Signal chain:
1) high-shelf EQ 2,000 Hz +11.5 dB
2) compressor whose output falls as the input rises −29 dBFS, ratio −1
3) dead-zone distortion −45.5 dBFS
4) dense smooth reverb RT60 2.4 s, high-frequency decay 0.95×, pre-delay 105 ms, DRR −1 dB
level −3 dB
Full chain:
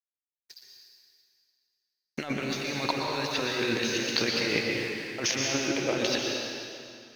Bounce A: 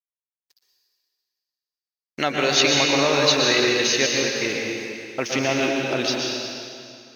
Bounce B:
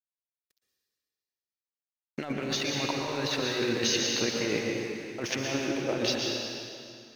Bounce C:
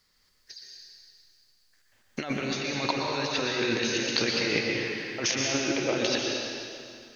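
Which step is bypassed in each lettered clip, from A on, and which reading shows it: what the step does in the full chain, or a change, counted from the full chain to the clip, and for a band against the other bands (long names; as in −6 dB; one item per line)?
2, change in crest factor −3.5 dB
1, 2 kHz band −3.5 dB
3, distortion level −20 dB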